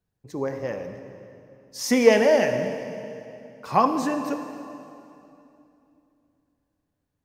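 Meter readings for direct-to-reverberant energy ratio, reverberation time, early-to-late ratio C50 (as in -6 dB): 6.5 dB, 2.8 s, 7.5 dB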